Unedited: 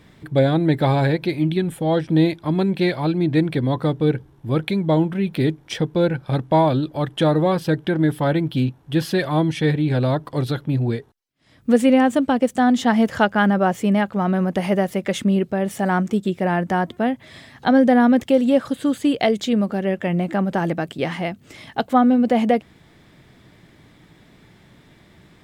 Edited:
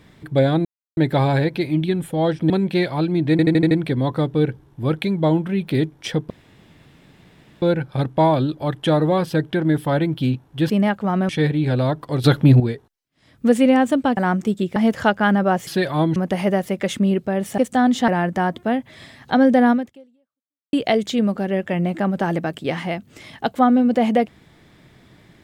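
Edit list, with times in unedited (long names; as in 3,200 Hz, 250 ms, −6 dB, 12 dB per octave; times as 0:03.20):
0:00.65: splice in silence 0.32 s
0:02.18–0:02.56: remove
0:03.37: stutter 0.08 s, 6 plays
0:05.96: splice in room tone 1.32 s
0:09.04–0:09.53: swap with 0:13.82–0:14.41
0:10.48–0:10.84: clip gain +9.5 dB
0:12.41–0:12.91: swap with 0:15.83–0:16.42
0:18.05–0:19.07: fade out exponential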